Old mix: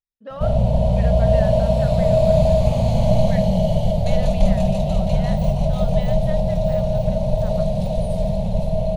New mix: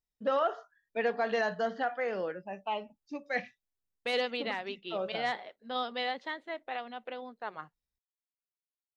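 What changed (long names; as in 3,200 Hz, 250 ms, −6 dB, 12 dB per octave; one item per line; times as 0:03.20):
first voice +5.5 dB
second voice +5.5 dB
background: muted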